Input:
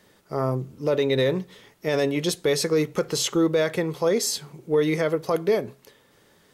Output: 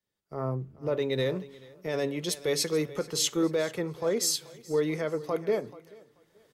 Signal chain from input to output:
camcorder AGC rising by 13 dB per second
on a send: repeating echo 435 ms, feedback 46%, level −14.5 dB
on the sum: multiband upward and downward expander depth 70%
level −7 dB

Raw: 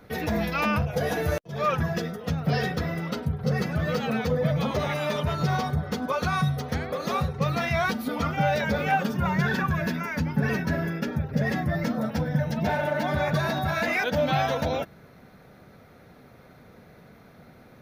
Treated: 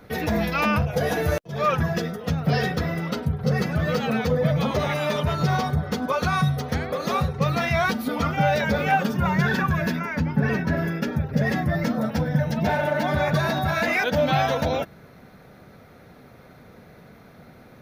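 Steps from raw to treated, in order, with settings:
0:09.99–0:10.77: high-shelf EQ 4,500 Hz −9 dB
level +3 dB

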